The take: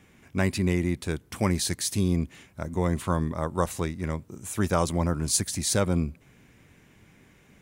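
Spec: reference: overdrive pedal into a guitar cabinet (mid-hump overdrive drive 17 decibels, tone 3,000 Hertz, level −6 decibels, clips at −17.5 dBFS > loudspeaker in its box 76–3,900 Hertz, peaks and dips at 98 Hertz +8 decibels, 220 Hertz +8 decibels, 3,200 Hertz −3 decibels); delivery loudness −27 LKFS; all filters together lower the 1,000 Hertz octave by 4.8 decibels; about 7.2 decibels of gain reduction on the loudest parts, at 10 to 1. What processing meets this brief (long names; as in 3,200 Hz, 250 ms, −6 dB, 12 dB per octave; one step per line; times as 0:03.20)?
parametric band 1,000 Hz −6 dB
downward compressor 10 to 1, threshold −27 dBFS
mid-hump overdrive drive 17 dB, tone 3,000 Hz, level −6 dB, clips at −17.5 dBFS
loudspeaker in its box 76–3,900 Hz, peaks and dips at 98 Hz +8 dB, 220 Hz +8 dB, 3,200 Hz −3 dB
level +4.5 dB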